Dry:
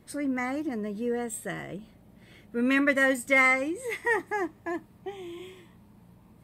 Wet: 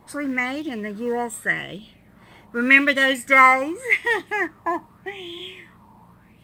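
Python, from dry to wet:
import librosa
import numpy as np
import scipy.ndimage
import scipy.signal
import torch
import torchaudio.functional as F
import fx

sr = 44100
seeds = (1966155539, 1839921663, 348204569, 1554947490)

p1 = fx.quant_float(x, sr, bits=2)
p2 = x + (p1 * librosa.db_to_amplitude(-10.0))
y = fx.bell_lfo(p2, sr, hz=0.84, low_hz=910.0, high_hz=3500.0, db=17)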